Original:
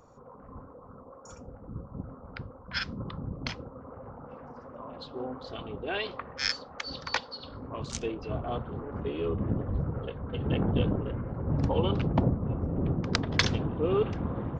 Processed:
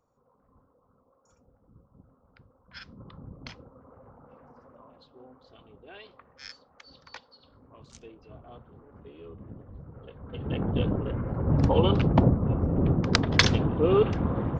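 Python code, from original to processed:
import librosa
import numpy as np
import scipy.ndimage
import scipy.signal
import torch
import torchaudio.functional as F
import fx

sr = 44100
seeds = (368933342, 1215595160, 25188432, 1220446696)

y = fx.gain(x, sr, db=fx.line((2.37, -17.5), (3.21, -8.0), (4.7, -8.0), (5.1, -15.0), (9.84, -15.0), (10.36, -4.0), (11.38, 5.0)))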